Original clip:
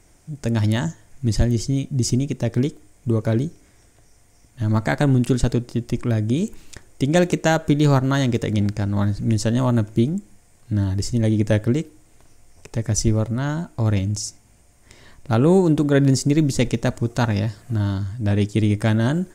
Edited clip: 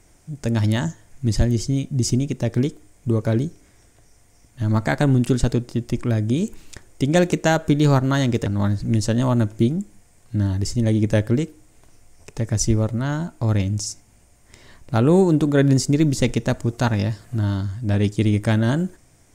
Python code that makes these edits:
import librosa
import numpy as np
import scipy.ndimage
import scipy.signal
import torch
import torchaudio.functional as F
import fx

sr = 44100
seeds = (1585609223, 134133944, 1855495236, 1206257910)

y = fx.edit(x, sr, fx.cut(start_s=8.46, length_s=0.37), tone=tone)